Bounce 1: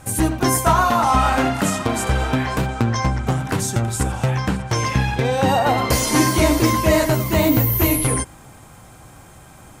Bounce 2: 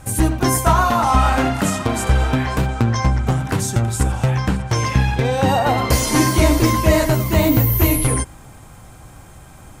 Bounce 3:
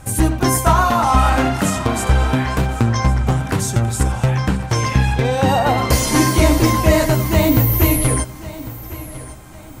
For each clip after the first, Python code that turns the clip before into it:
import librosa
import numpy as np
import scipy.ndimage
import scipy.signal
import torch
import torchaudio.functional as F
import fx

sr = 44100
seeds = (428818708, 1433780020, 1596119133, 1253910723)

y1 = fx.low_shelf(x, sr, hz=73.0, db=10.0)
y2 = fx.echo_feedback(y1, sr, ms=1101, feedback_pct=33, wet_db=-17)
y2 = F.gain(torch.from_numpy(y2), 1.0).numpy()